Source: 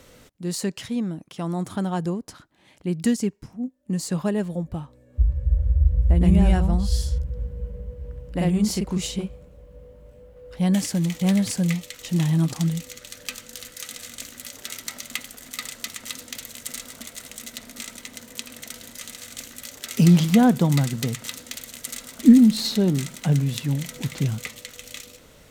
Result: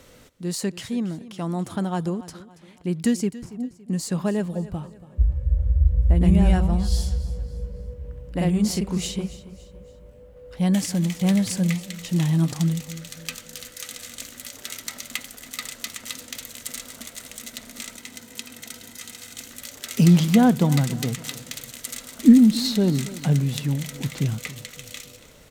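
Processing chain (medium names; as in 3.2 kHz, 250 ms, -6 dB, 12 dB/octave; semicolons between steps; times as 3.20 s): 17.96–19.49 s: comb of notches 570 Hz; feedback delay 281 ms, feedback 40%, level -17 dB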